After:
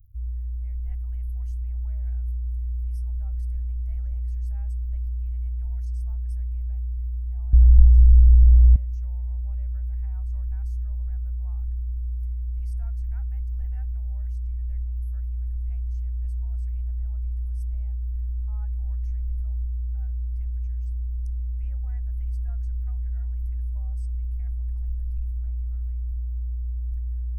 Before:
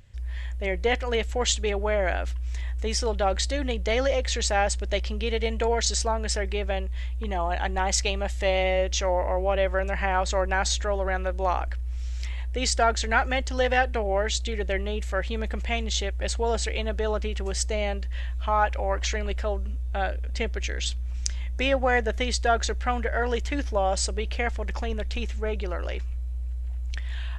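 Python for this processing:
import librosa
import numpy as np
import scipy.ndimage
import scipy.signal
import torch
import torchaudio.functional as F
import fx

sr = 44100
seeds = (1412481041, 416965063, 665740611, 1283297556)

y = fx.peak_eq(x, sr, hz=790.0, db=3.5, octaves=0.42)
y = fx.dmg_crackle(y, sr, seeds[0], per_s=130.0, level_db=-53.0)
y = scipy.signal.sosfilt(scipy.signal.cheby2(4, 40, [180.0, 7800.0], 'bandstop', fs=sr, output='sos'), y)
y = fx.tilt_eq(y, sr, slope=-4.0, at=(7.53, 8.76))
y = F.gain(torch.from_numpy(y), 2.5).numpy()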